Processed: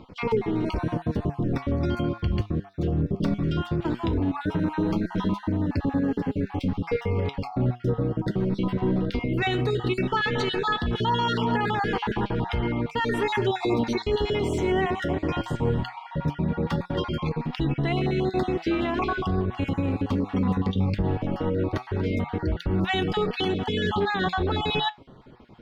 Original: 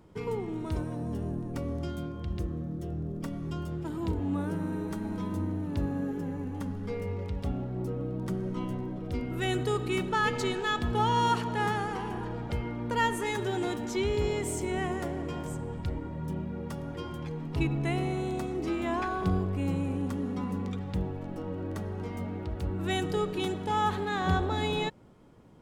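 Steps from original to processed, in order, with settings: random holes in the spectrogram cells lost 31%; resonant high shelf 5.8 kHz -14 dB, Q 1.5; in parallel at +0.5 dB: gain riding within 3 dB 0.5 s; on the sum: peak limiter -20.5 dBFS, peak gain reduction 9.5 dB; flange 0.17 Hz, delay 3.7 ms, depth 7.1 ms, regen +75%; trim +8.5 dB

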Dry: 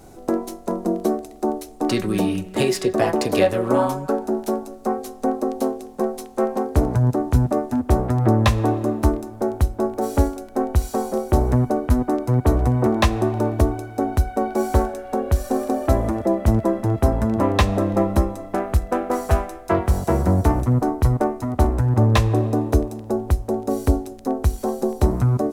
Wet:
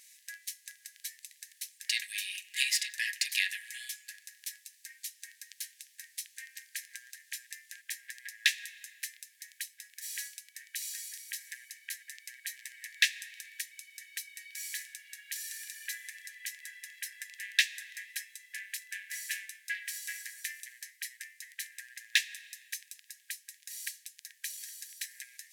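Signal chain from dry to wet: brick-wall FIR high-pass 1.6 kHz

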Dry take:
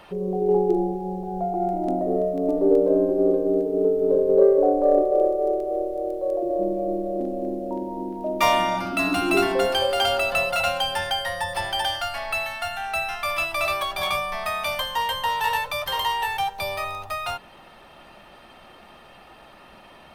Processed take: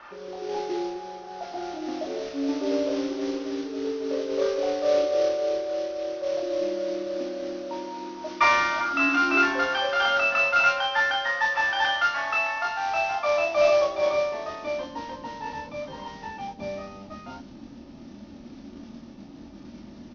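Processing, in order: in parallel at -2.5 dB: gain riding within 3 dB 2 s; on the sum: peaking EQ 270 Hz +9.5 dB 0.59 oct; added noise brown -36 dBFS; band-pass sweep 1.4 kHz -> 220 Hz, 12.12–15.40 s; comb 3.4 ms, depth 35%; modulation noise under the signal 12 dB; steep low-pass 6 kHz 96 dB/octave; on a send: early reflections 25 ms -3 dB, 39 ms -5 dB

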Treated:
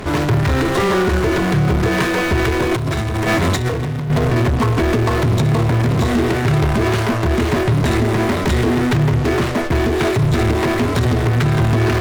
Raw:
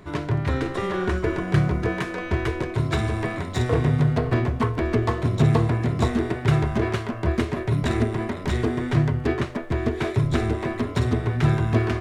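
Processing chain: in parallel at -11.5 dB: fuzz box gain 43 dB, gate -48 dBFS; on the sum: peak limiter -13.5 dBFS, peak gain reduction 8 dB; 2.71–4.10 s: compressor with a negative ratio -22 dBFS, ratio -0.5; trim +4.5 dB

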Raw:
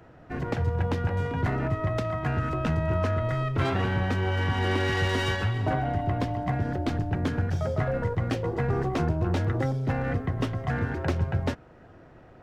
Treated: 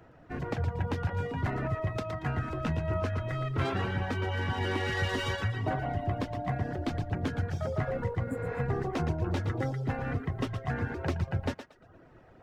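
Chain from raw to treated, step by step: on a send: thinning echo 116 ms, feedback 33%, high-pass 330 Hz, level -6.5 dB; on the sum: reverb removal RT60 0.57 s; spectral replace 8.29–8.57 s, 280–6900 Hz both; trim -3.5 dB

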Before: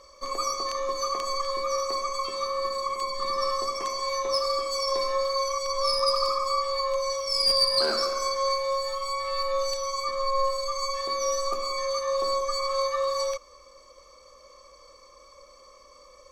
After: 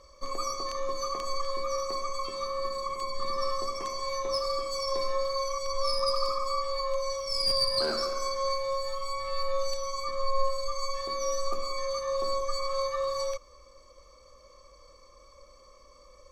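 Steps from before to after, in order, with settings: bass shelf 230 Hz +11 dB; trim -5 dB

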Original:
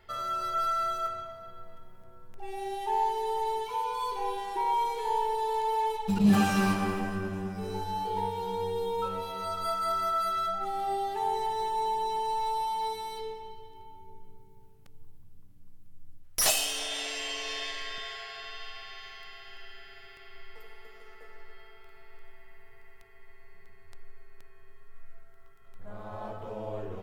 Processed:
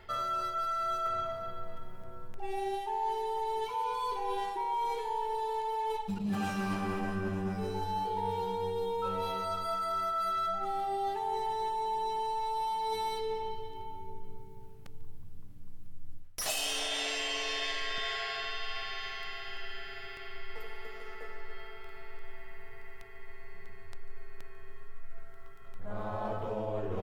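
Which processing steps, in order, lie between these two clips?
treble shelf 5.3 kHz -5 dB; reverse; compression 16:1, threshold -37 dBFS, peak gain reduction 20 dB; reverse; delay 145 ms -21.5 dB; trim +7 dB

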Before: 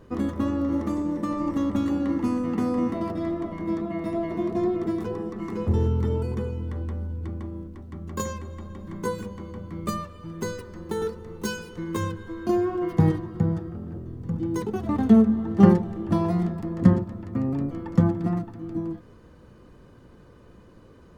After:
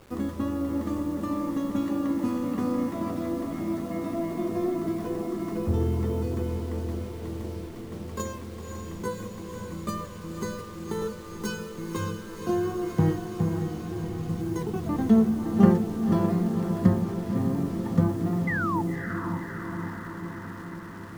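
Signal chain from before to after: word length cut 8-bit, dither none; painted sound fall, 18.47–18.82 s, 840–2100 Hz -26 dBFS; echo that smears into a reverb 539 ms, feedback 73%, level -7 dB; trim -3.5 dB

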